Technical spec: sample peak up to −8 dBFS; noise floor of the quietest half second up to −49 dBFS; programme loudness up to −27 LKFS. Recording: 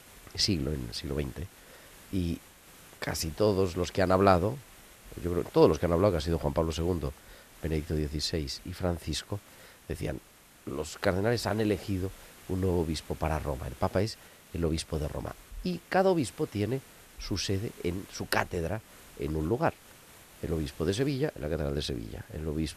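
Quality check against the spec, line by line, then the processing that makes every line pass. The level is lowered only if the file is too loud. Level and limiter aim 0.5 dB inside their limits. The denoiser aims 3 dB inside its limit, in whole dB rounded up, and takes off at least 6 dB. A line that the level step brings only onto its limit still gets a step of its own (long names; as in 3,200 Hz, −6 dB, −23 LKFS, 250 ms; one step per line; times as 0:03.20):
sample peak −7.0 dBFS: out of spec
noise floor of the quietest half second −54 dBFS: in spec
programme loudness −31.0 LKFS: in spec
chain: brickwall limiter −8.5 dBFS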